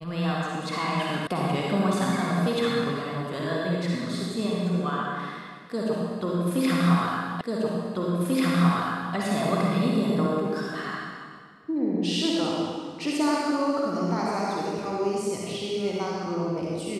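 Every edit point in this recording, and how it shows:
1.27 sound cut off
7.41 repeat of the last 1.74 s

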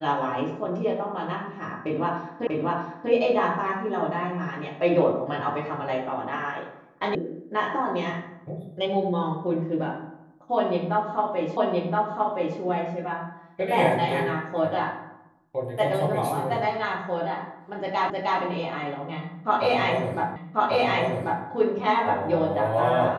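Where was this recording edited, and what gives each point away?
2.47 repeat of the last 0.64 s
7.15 sound cut off
11.57 repeat of the last 1.02 s
18.1 repeat of the last 0.31 s
20.36 repeat of the last 1.09 s

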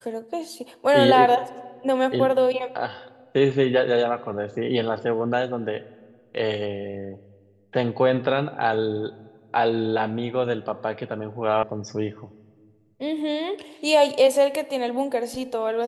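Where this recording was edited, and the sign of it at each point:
11.63 sound cut off

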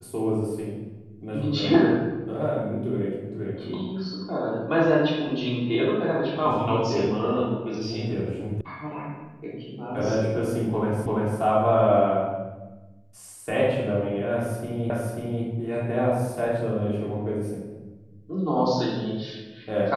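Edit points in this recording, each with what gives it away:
8.61 sound cut off
11.06 repeat of the last 0.34 s
14.9 repeat of the last 0.54 s

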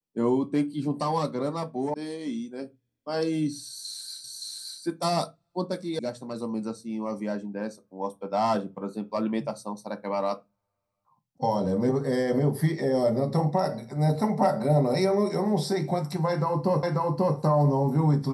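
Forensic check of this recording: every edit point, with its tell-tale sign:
1.94 sound cut off
4.24 repeat of the last 0.57 s
5.99 sound cut off
16.83 repeat of the last 0.54 s

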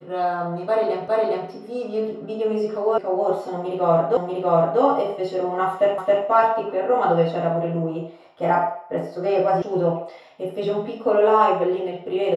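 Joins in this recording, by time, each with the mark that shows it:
1.08 repeat of the last 0.41 s
2.98 sound cut off
4.17 repeat of the last 0.64 s
5.98 repeat of the last 0.27 s
9.62 sound cut off

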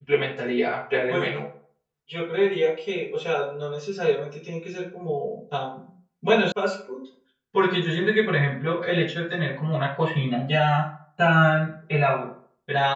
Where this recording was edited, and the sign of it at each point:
6.52 sound cut off

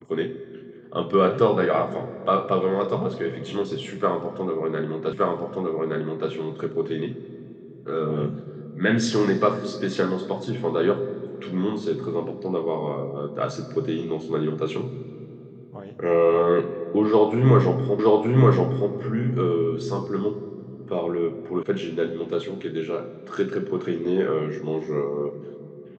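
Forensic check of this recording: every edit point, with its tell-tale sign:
5.13 repeat of the last 1.17 s
17.99 repeat of the last 0.92 s
21.63 sound cut off

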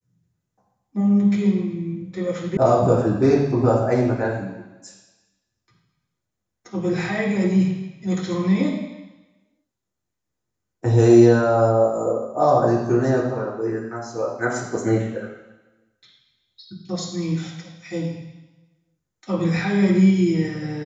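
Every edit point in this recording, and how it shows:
2.57 sound cut off

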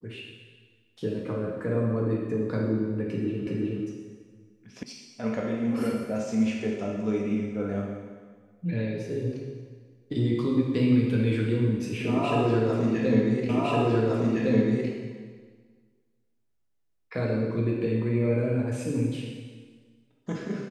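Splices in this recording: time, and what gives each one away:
3.47 repeat of the last 0.37 s
4.83 sound cut off
13.49 repeat of the last 1.41 s

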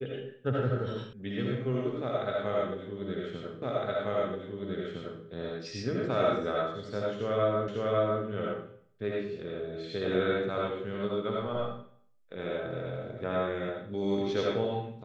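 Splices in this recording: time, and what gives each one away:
1.13 sound cut off
3.62 repeat of the last 1.61 s
7.68 repeat of the last 0.55 s

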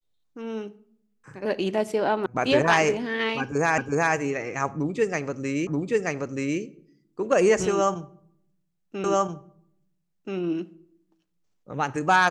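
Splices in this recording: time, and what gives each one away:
2.26 sound cut off
3.78 repeat of the last 0.37 s
5.67 repeat of the last 0.93 s
9.04 repeat of the last 1.33 s

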